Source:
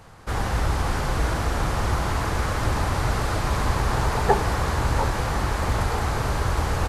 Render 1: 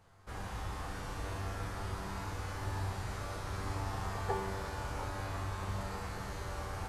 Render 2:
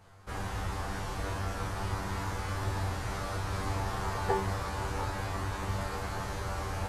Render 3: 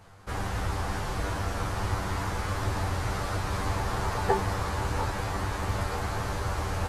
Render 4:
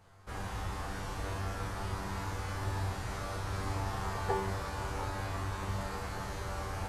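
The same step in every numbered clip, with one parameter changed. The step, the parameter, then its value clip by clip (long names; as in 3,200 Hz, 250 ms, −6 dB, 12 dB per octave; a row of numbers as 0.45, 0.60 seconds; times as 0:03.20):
tuned comb filter, decay: 1.9, 0.43, 0.15, 0.9 seconds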